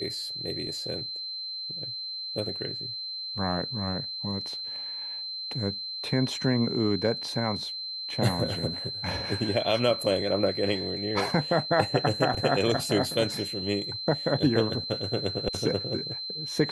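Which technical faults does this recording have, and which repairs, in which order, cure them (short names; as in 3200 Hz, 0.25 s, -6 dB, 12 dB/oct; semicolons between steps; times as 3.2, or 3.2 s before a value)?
tone 4100 Hz -33 dBFS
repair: notch 4100 Hz, Q 30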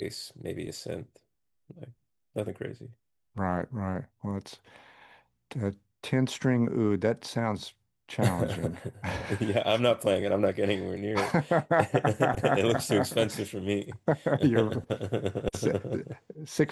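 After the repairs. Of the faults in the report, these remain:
none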